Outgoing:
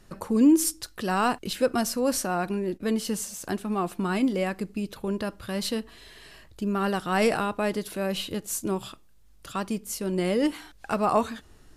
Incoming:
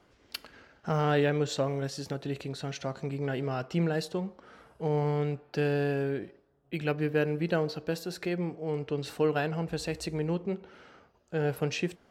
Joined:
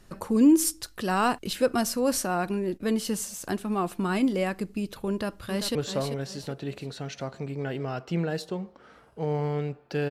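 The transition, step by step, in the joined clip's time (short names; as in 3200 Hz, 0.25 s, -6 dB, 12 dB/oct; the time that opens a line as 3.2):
outgoing
5.1–5.75 echo throw 0.39 s, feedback 35%, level -8.5 dB
5.75 switch to incoming from 1.38 s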